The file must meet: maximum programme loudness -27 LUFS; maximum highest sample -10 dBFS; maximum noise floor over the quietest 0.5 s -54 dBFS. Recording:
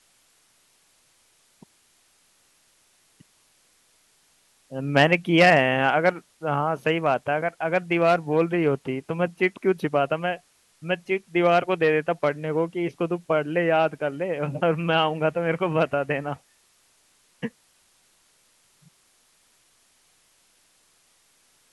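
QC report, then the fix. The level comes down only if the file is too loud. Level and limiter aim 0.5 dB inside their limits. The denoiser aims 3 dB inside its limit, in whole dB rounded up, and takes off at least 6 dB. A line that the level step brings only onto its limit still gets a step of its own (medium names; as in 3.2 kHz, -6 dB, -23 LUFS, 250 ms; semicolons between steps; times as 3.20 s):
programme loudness -23.0 LUFS: fail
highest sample -4.5 dBFS: fail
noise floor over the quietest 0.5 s -63 dBFS: pass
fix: trim -4.5 dB; peak limiter -10.5 dBFS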